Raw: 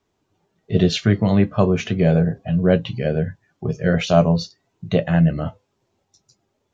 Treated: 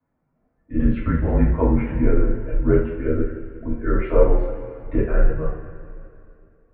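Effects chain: low shelf 170 Hz +11 dB; two-slope reverb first 0.45 s, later 2.7 s, from -15 dB, DRR -7.5 dB; mistuned SSB -140 Hz 170–2100 Hz; gain -9.5 dB

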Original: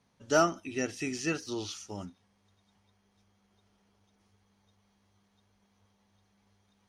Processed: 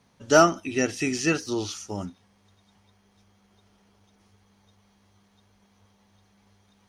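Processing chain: 1.42–2.05 bell 3200 Hz -4.5 dB 1.5 oct; gain +8 dB

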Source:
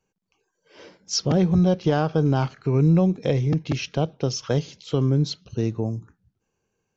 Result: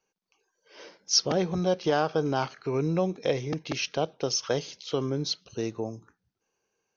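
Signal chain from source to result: Chebyshev low-pass 6400 Hz, order 6; tone controls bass -14 dB, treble +4 dB

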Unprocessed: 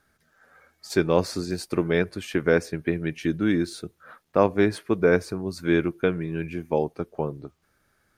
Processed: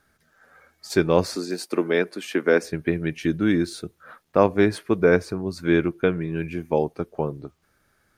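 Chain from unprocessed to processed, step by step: 1.35–2.63 HPF 220 Hz 24 dB/oct; 5.15–6.36 high shelf 6600 Hz -5 dB; gain +2 dB

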